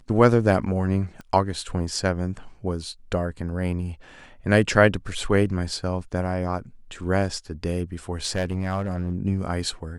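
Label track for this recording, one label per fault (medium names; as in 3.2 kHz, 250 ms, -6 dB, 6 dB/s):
1.210000	1.210000	pop -27 dBFS
8.260000	9.150000	clipped -19.5 dBFS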